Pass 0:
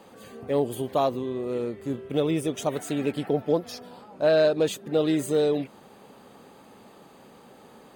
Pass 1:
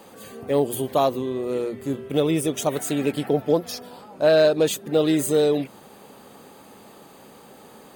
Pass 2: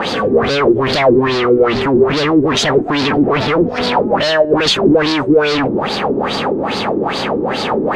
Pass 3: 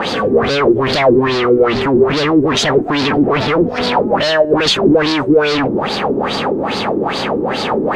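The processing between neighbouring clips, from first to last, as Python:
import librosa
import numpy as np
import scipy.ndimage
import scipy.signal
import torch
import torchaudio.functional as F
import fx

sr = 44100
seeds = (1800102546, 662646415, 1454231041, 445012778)

y1 = fx.high_shelf(x, sr, hz=7500.0, db=9.5)
y1 = fx.hum_notches(y1, sr, base_hz=60, count=4)
y1 = y1 * librosa.db_to_amplitude(3.5)
y2 = fx.fuzz(y1, sr, gain_db=47.0, gate_db=-56.0)
y2 = fx.filter_lfo_lowpass(y2, sr, shape='sine', hz=2.4, low_hz=320.0, high_hz=4600.0, q=4.1)
y2 = y2 * librosa.db_to_amplitude(-2.0)
y3 = fx.quant_dither(y2, sr, seeds[0], bits=12, dither='triangular')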